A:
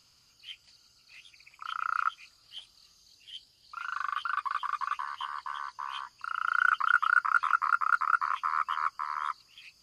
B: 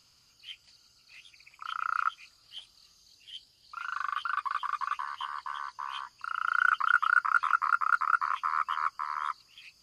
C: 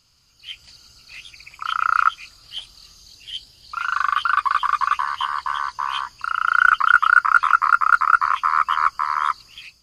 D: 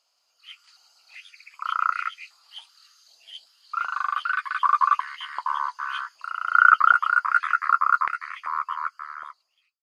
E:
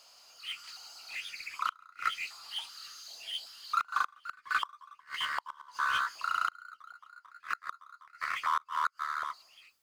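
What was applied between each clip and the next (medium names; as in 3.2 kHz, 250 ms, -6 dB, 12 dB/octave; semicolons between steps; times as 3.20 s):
no audible change
bass shelf 85 Hz +11 dB; level rider gain up to 12 dB; trim +1 dB
fade out at the end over 2.38 s; doubling 12 ms -12.5 dB; step-sequenced high-pass 2.6 Hz 660–2000 Hz; trim -10.5 dB
power-law waveshaper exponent 0.7; inverted gate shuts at -11 dBFS, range -30 dB; trim -7 dB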